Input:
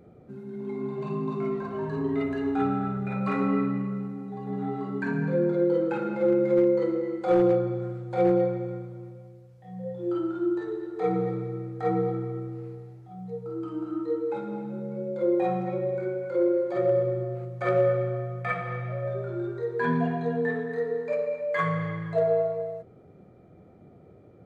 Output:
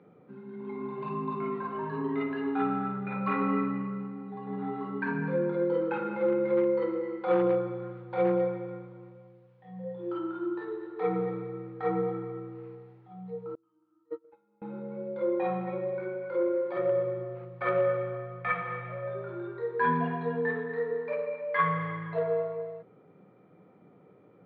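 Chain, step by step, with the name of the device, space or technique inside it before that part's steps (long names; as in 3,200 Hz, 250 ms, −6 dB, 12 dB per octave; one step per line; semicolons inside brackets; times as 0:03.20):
high-pass filter 140 Hz 24 dB per octave
guitar cabinet (loudspeaker in its box 100–3,400 Hz, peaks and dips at 140 Hz −5 dB, 230 Hz −6 dB, 360 Hz −6 dB, 660 Hz −9 dB, 1,000 Hz +6 dB)
0:13.55–0:14.62: noise gate −27 dBFS, range −34 dB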